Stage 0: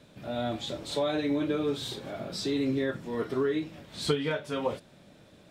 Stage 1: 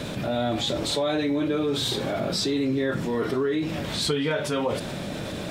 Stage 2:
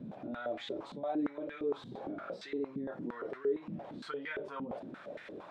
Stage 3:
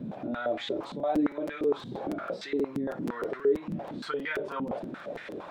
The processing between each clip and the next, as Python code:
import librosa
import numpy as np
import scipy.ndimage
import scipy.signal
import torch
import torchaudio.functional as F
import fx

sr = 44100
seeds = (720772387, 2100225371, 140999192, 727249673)

y1 = fx.env_flatten(x, sr, amount_pct=70)
y2 = fx.filter_held_bandpass(y1, sr, hz=8.7, low_hz=210.0, high_hz=1900.0)
y2 = y2 * librosa.db_to_amplitude(-3.5)
y3 = fx.buffer_crackle(y2, sr, first_s=0.83, period_s=0.16, block=256, kind='repeat')
y3 = y3 * librosa.db_to_amplitude(7.5)